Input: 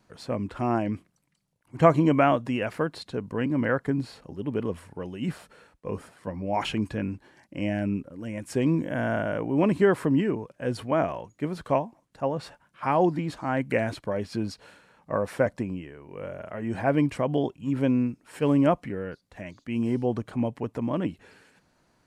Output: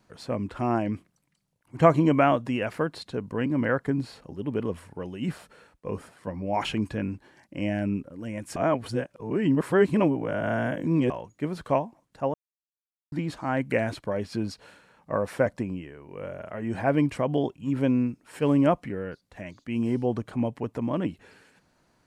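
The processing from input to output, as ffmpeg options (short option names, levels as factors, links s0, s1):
-filter_complex "[0:a]asplit=5[s0][s1][s2][s3][s4];[s0]atrim=end=8.562[s5];[s1]atrim=start=8.558:end=11.102,asetpts=PTS-STARTPTS,areverse[s6];[s2]atrim=start=11.098:end=12.34,asetpts=PTS-STARTPTS,afade=t=out:st=1.238:d=0.004:c=hsin[s7];[s3]atrim=start=12.34:end=13.12,asetpts=PTS-STARTPTS,volume=0[s8];[s4]atrim=start=13.12,asetpts=PTS-STARTPTS,afade=t=in:d=0.004:c=hsin[s9];[s5][s6]acrossfade=d=0.004:c1=hsin:c2=hsin[s10];[s7][s8][s9]concat=n=3:v=0:a=1[s11];[s10][s11]acrossfade=d=0.004:c1=hsin:c2=hsin"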